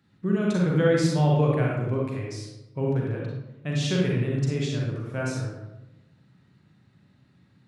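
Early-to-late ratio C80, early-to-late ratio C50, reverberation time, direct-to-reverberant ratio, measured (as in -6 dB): 3.5 dB, 0.0 dB, 1.0 s, -2.5 dB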